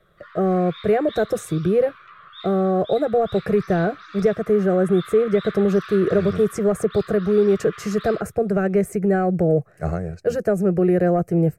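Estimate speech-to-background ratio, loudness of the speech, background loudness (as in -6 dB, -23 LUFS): 19.5 dB, -20.5 LUFS, -40.0 LUFS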